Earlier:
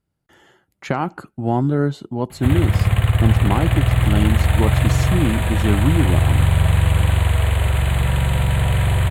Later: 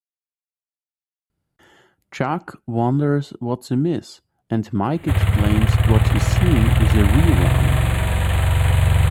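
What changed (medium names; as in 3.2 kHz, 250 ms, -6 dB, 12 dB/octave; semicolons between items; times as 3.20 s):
speech: entry +1.30 s; background: entry +2.65 s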